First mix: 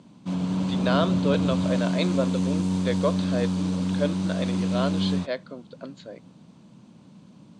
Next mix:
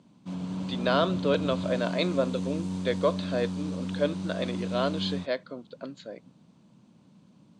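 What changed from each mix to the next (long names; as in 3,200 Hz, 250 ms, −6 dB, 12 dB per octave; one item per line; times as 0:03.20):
background −7.5 dB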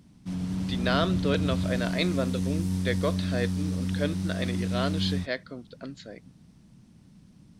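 master: remove loudspeaker in its box 180–7,400 Hz, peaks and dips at 560 Hz +6 dB, 1,000 Hz +6 dB, 1,900 Hz −7 dB, 5,400 Hz −9 dB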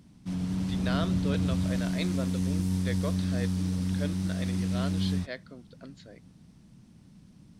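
speech −7.5 dB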